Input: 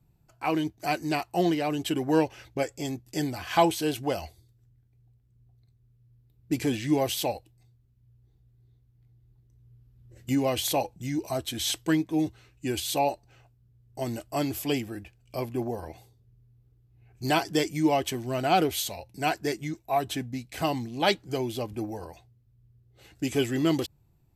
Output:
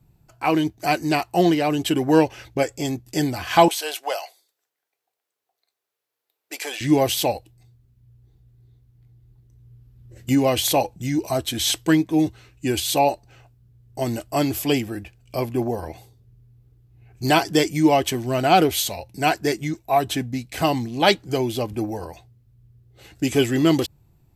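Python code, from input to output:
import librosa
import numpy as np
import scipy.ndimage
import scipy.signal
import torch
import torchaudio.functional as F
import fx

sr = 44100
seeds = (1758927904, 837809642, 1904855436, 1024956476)

y = fx.highpass(x, sr, hz=580.0, slope=24, at=(3.68, 6.81))
y = F.gain(torch.from_numpy(y), 7.0).numpy()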